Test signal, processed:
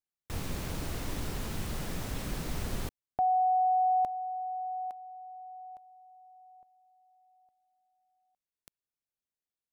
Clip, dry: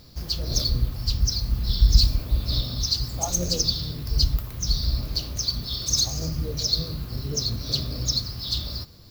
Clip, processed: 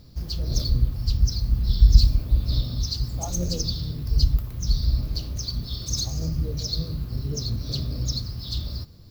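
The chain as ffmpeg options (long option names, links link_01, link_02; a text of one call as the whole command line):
ffmpeg -i in.wav -af "lowshelf=frequency=380:gain=9.5,volume=-6.5dB" out.wav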